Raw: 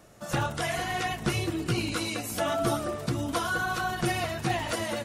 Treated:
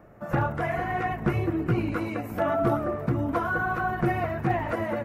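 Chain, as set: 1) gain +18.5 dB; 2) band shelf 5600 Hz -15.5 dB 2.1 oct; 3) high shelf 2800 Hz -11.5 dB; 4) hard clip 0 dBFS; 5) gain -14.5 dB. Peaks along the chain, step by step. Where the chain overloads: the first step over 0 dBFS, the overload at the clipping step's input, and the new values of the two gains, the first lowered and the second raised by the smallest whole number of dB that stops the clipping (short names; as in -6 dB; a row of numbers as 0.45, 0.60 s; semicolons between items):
+4.5, +4.0, +3.5, 0.0, -14.5 dBFS; step 1, 3.5 dB; step 1 +14.5 dB, step 5 -10.5 dB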